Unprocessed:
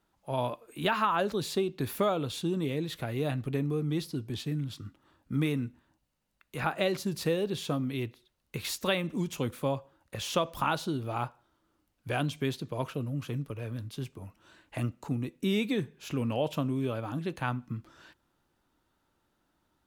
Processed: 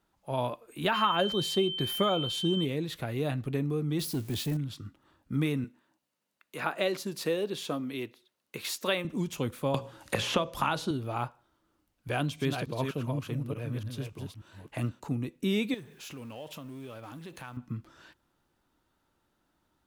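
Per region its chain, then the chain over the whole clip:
0.93–2.64 comb 5.6 ms, depth 34% + whine 3100 Hz -33 dBFS
3.99–4.57 switching spikes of -38.5 dBFS + sample leveller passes 1
5.64–9.05 HPF 240 Hz + notch 790 Hz, Q 19
9.74–10.91 LPF 12000 Hz + notches 60/120/180/240/300/360/420/480/540 Hz + three-band squash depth 100%
12.08–15.02 reverse delay 0.292 s, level -5 dB + HPF 46 Hz
15.74–17.57 G.711 law mismatch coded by mu + tilt +1.5 dB/oct + compressor 2.5:1, threshold -45 dBFS
whole clip: dry

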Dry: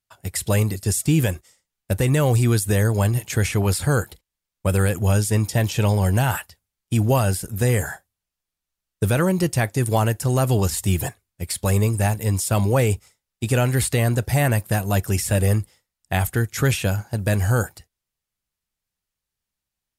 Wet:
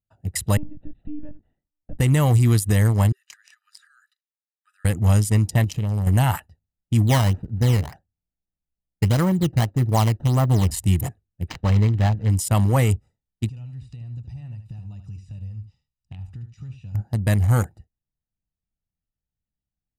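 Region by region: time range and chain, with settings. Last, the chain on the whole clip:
0.57–1.99 high shelf 3100 Hz -8.5 dB + compressor 2:1, threshold -37 dBFS + monotone LPC vocoder at 8 kHz 300 Hz
3.12–4.85 compressor 10:1, threshold -23 dBFS + rippled Chebyshev high-pass 1200 Hz, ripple 6 dB
5.64–6.07 bell 1200 Hz -5 dB 1 oct + compressor 8:1, threshold -21 dBFS
7.07–10.71 median filter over 15 samples + decimation with a swept rate 11×, swing 160% 1.7 Hz
11.48–12.3 self-modulated delay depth 0.094 ms + decimation joined by straight lines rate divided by 4×
13.49–16.95 EQ curve 150 Hz 0 dB, 340 Hz -14 dB, 670 Hz -13 dB, 1100 Hz +5 dB, 1600 Hz -11 dB, 2300 Hz +7 dB, 5400 Hz +10 dB, 13000 Hz -12 dB + compressor 10:1, threshold -34 dBFS + echo 75 ms -9.5 dB
whole clip: Wiener smoothing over 41 samples; notch 390 Hz, Q 12; comb 1 ms, depth 39%

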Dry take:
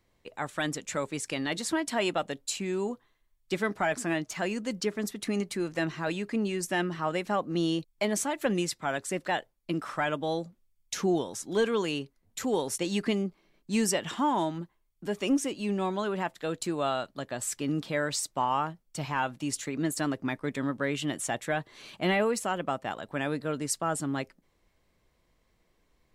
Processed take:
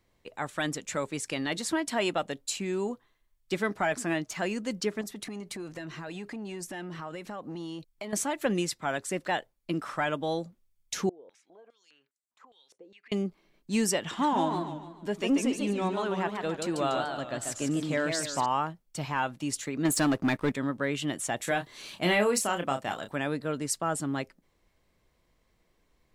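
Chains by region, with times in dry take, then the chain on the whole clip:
5.01–8.13 compressor 10:1, threshold -33 dBFS + core saturation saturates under 520 Hz
11.09–13.12 compressor 12:1, threshold -39 dBFS + stepped band-pass 4.9 Hz 470–7700 Hz
14.03–18.46 high shelf 11000 Hz -9 dB + warbling echo 0.145 s, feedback 43%, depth 189 cents, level -5 dB
19.85–20.52 upward compressor, threshold -37 dBFS + sample leveller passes 2
21.37–23.16 high shelf 3800 Hz +8 dB + doubler 29 ms -7 dB
whole clip: dry

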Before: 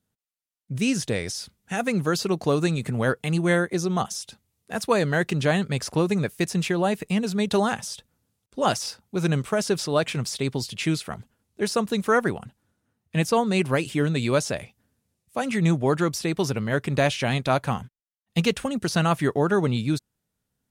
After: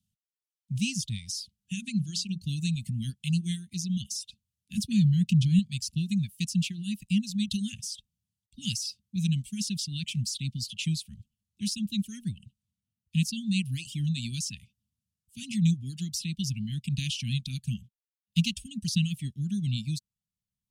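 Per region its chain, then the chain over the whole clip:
1.73–2.42 LPF 9800 Hz 24 dB/oct + notches 60/120/180/240/300/360/420 Hz
4.77–5.59 bell 140 Hz +10 dB 3 oct + core saturation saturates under 410 Hz
whole clip: reverb removal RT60 1.4 s; Chebyshev band-stop 210–2800 Hz, order 4; high shelf 12000 Hz -7.5 dB

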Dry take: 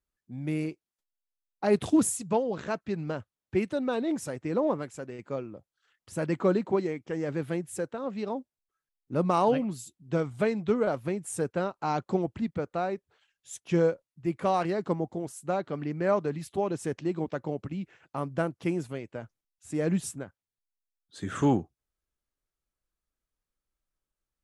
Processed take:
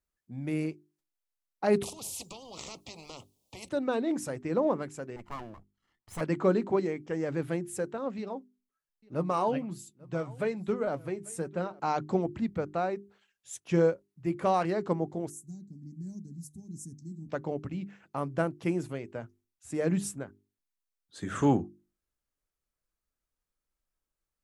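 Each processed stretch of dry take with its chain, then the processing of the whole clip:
1.83–3.69 compressor 10:1, threshold -32 dBFS + Butterworth band-stop 1600 Hz, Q 0.69 + spectral compressor 4:1
5.16–6.21 minimum comb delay 0.98 ms + mismatched tape noise reduction decoder only
8.18–11.8 flange 1.2 Hz, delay 4.9 ms, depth 3.3 ms, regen +54% + echo 0.843 s -23.5 dB
15.3–17.29 elliptic band-stop 220–6300 Hz + low shelf 220 Hz -6.5 dB + mismatched tape noise reduction decoder only
whole clip: bell 3400 Hz -2.5 dB; notches 50/100/150/200/250/300/350/400 Hz

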